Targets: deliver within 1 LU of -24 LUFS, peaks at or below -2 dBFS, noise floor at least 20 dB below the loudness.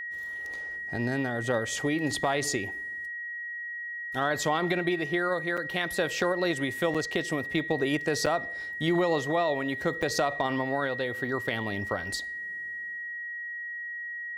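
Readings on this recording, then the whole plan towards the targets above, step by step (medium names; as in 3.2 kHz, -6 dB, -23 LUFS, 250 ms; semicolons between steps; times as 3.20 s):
dropouts 4; longest dropout 5.9 ms; steady tone 1.9 kHz; tone level -34 dBFS; loudness -29.5 LUFS; peak level -14.0 dBFS; loudness target -24.0 LUFS
-> interpolate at 5.57/6.94/8.26/10.02 s, 5.9 ms; band-stop 1.9 kHz, Q 30; trim +5.5 dB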